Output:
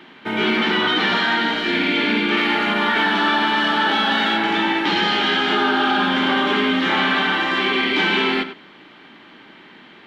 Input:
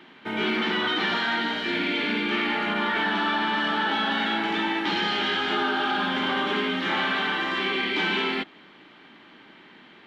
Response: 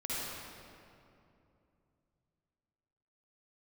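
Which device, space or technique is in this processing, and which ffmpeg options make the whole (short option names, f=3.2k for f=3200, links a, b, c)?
keyed gated reverb: -filter_complex "[0:a]asettb=1/sr,asplit=3[a][b][c];[a]atrim=end=2.374[d];[b]atrim=start=2.37:end=4.37,asetpts=PTS-STARTPTS,afade=t=in:d=0.004:c=qsin,afade=t=out:st=1.996:d=0.004:c=qsin,bass=f=250:g=-2,treble=f=4k:g=4[e];[c]atrim=start=4.366[f];[d][e]acrossfade=d=0.004:c1=hsin:c2=qsin[g];[g][f]acrossfade=d=0.004:c1=qsin:c2=hsin,asplit=3[h][i][j];[1:a]atrim=start_sample=2205[k];[i][k]afir=irnorm=-1:irlink=0[l];[j]apad=whole_len=443775[m];[l][m]sidechaingate=range=-33dB:threshold=-39dB:ratio=16:detection=peak,volume=-15dB[n];[h][n]amix=inputs=2:normalize=0,volume=5.5dB"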